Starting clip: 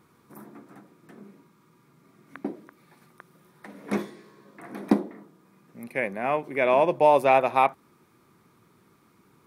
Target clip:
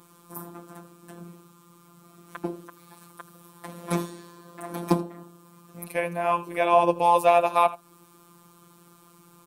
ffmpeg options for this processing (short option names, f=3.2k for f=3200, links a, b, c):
-filter_complex "[0:a]crystalizer=i=1.5:c=0,asplit=2[a][b];[b]acompressor=threshold=-31dB:ratio=6,volume=1dB[c];[a][c]amix=inputs=2:normalize=0,equalizer=f=630:t=o:w=0.33:g=5,equalizer=f=1k:t=o:w=0.33:g=7,equalizer=f=2k:t=o:w=0.33:g=-8,equalizer=f=3.15k:t=o:w=0.33:g=4,equalizer=f=8k:t=o:w=0.33:g=5,afftfilt=real='hypot(re,im)*cos(PI*b)':imag='0':win_size=1024:overlap=0.75,asplit=2[d][e];[e]aecho=0:1:82:0.119[f];[d][f]amix=inputs=2:normalize=0"